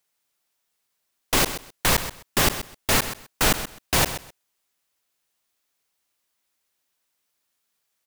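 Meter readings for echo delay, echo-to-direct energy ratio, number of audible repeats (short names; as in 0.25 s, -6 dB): 0.129 s, -12.0 dB, 2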